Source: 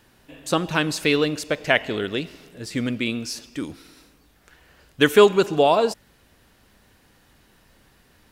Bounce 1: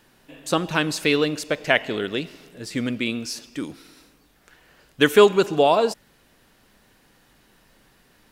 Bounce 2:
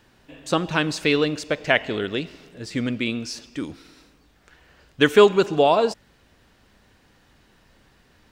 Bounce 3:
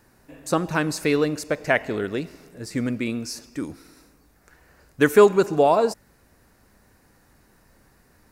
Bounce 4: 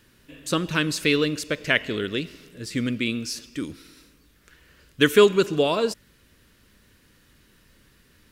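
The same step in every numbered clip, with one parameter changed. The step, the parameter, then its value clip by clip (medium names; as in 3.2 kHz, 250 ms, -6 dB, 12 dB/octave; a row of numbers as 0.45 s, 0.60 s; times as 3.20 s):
peaking EQ, frequency: 73 Hz, 12 kHz, 3.2 kHz, 770 Hz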